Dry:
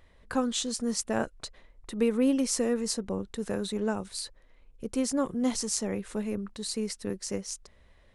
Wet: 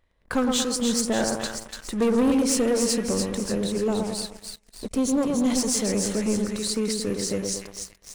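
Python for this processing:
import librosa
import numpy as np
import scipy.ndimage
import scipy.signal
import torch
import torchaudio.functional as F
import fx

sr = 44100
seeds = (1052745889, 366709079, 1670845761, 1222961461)

y = fx.env_flanger(x, sr, rest_ms=5.6, full_db=-26.5, at=(3.39, 5.46))
y = fx.echo_split(y, sr, split_hz=1500.0, low_ms=113, high_ms=292, feedback_pct=52, wet_db=-5.0)
y = fx.leveller(y, sr, passes=3)
y = F.gain(torch.from_numpy(y), -4.5).numpy()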